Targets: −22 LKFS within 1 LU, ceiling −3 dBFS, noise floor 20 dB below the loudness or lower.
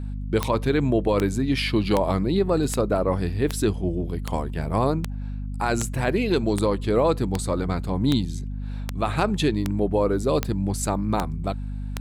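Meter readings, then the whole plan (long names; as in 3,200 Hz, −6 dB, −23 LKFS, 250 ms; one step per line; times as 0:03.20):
number of clicks 16; mains hum 50 Hz; hum harmonics up to 250 Hz; level of the hum −28 dBFS; integrated loudness −24.5 LKFS; sample peak −7.0 dBFS; target loudness −22.0 LKFS
→ click removal
mains-hum notches 50/100/150/200/250 Hz
level +2.5 dB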